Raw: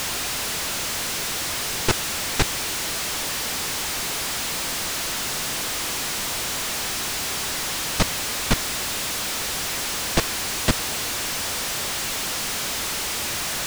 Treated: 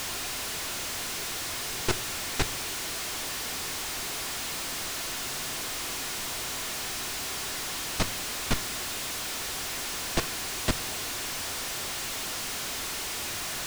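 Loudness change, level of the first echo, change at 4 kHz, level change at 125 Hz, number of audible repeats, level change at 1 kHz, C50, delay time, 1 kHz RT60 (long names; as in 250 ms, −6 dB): −7.0 dB, no echo audible, −7.0 dB, −7.0 dB, no echo audible, −6.5 dB, 18.5 dB, no echo audible, 0.65 s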